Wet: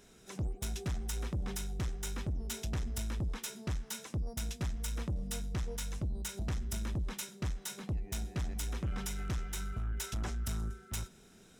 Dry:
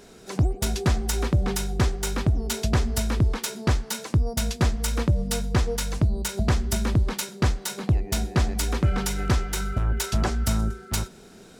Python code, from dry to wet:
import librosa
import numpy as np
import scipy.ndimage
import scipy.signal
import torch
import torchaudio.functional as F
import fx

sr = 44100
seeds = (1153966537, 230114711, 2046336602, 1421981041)

y = fx.peak_eq(x, sr, hz=540.0, db=-6.5, octaves=2.7)
y = fx.notch(y, sr, hz=4500.0, q=6.2)
y = 10.0 ** (-22.5 / 20.0) * np.tanh(y / 10.0 ** (-22.5 / 20.0))
y = F.gain(torch.from_numpy(y), -8.0).numpy()